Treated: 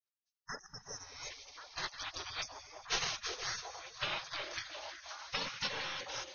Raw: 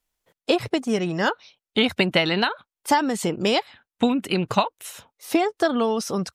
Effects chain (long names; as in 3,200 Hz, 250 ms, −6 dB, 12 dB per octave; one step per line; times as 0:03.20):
automatic gain control
soft clipping −2.5 dBFS, distortion −24 dB
0:02.39–0:03.04: bass and treble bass +8 dB, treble +12 dB
pitch vibrato 1.4 Hz 37 cents
linear-phase brick-wall low-pass 6,600 Hz
convolution reverb RT60 4.9 s, pre-delay 65 ms, DRR 9 dB
gate on every frequency bin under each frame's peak −30 dB weak
0:00.66–0:01.20: parametric band 1,500 Hz −10 dB 2.8 octaves
0:00.43–0:01.24: healed spectral selection 2,000–5,100 Hz both
echo through a band-pass that steps 361 ms, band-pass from 440 Hz, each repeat 0.7 octaves, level 0 dB
level −2.5 dB